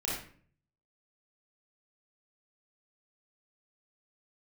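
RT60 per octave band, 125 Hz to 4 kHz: 0.85, 0.65, 0.50, 0.45, 0.45, 0.35 s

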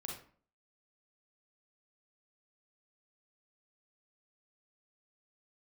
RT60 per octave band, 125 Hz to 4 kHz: 0.50, 0.55, 0.50, 0.45, 0.40, 0.30 s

